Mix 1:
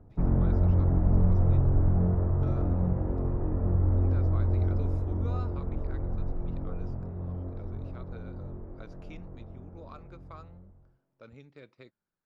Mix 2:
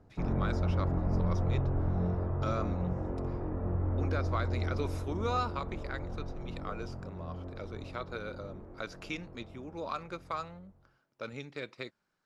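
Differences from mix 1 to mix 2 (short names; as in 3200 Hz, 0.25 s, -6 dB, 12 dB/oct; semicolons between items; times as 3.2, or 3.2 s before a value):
speech +12.0 dB; master: add tilt +2 dB/oct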